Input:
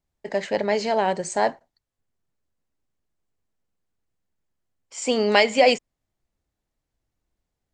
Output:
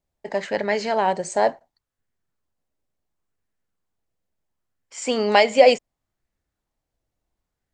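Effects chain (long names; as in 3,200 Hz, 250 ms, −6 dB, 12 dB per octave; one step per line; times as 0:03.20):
auto-filter bell 0.71 Hz 550–1,800 Hz +6 dB
level −1 dB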